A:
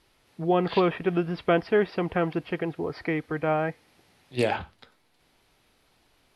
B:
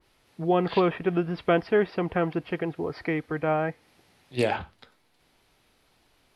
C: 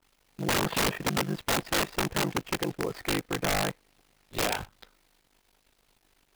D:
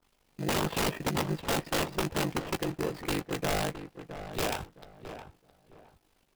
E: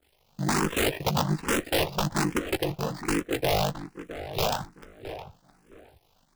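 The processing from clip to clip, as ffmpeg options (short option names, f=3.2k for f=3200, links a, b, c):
-af "adynamicequalizer=threshold=0.00891:dfrequency=2400:dqfactor=0.7:tfrequency=2400:tqfactor=0.7:attack=5:release=100:ratio=0.375:range=2:mode=cutabove:tftype=highshelf"
-af "acrusher=bits=8:dc=4:mix=0:aa=0.000001,aeval=exprs='val(0)*sin(2*PI*25*n/s)':c=same,aeval=exprs='(mod(12.6*val(0)+1,2)-1)/12.6':c=same,volume=2dB"
-filter_complex "[0:a]asplit=2[a][b];[b]acrusher=samples=20:mix=1:aa=0.000001,volume=-5dB[c];[a][c]amix=inputs=2:normalize=0,asplit=2[d][e];[e]adelay=13,volume=-11.5dB[f];[d][f]amix=inputs=2:normalize=0,asplit=2[g][h];[h]adelay=665,lowpass=f=1.7k:p=1,volume=-10.5dB,asplit=2[i][j];[j]adelay=665,lowpass=f=1.7k:p=1,volume=0.26,asplit=2[k][l];[l]adelay=665,lowpass=f=1.7k:p=1,volume=0.26[m];[g][i][k][m]amix=inputs=4:normalize=0,volume=-5dB"
-filter_complex "[0:a]asplit=2[a][b];[b]afreqshift=1.2[c];[a][c]amix=inputs=2:normalize=1,volume=7dB"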